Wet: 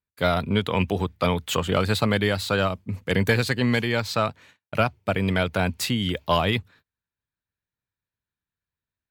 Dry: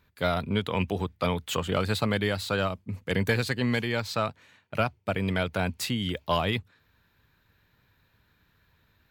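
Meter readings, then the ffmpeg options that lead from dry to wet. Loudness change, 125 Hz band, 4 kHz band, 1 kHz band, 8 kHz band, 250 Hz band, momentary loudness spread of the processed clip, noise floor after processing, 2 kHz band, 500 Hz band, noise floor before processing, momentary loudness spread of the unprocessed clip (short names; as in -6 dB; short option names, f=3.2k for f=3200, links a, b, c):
+4.5 dB, +4.5 dB, +4.5 dB, +4.5 dB, +4.5 dB, +4.5 dB, 4 LU, under -85 dBFS, +4.5 dB, +4.5 dB, -68 dBFS, 4 LU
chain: -af "agate=range=-31dB:threshold=-54dB:ratio=16:detection=peak,volume=4.5dB"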